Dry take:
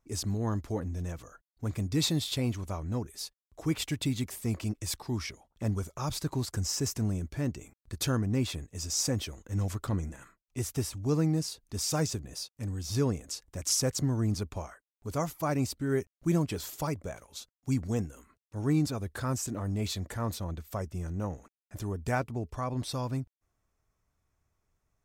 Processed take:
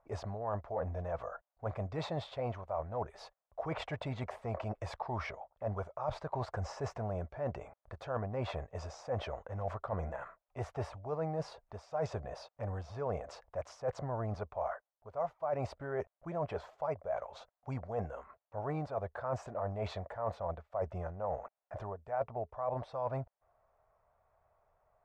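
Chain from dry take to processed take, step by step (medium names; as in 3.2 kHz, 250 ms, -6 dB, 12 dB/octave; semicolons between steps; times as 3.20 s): low-pass 1.1 kHz 12 dB/octave; resonant low shelf 430 Hz -13 dB, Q 3; reverse; compression 6:1, threshold -45 dBFS, peak gain reduction 21.5 dB; reverse; trim +11 dB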